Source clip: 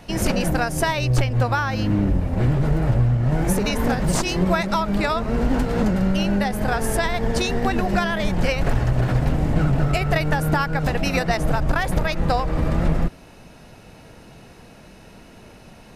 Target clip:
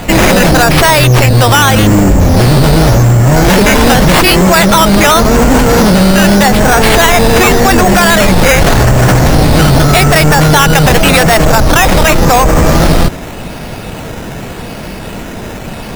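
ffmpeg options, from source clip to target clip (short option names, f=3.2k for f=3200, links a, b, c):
-af "acrusher=samples=8:mix=1:aa=0.000001:lfo=1:lforange=4.8:lforate=0.86,apsyclip=25dB,volume=-2.5dB"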